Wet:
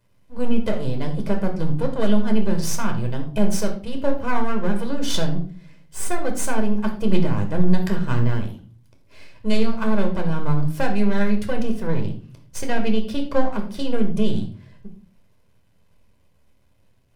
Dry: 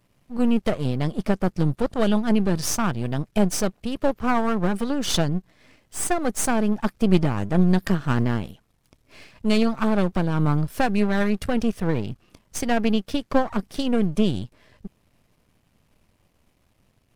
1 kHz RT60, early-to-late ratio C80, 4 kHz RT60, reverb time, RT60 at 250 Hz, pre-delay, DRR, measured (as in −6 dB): 0.40 s, 13.5 dB, 0.35 s, 0.45 s, 0.60 s, 10 ms, 3.5 dB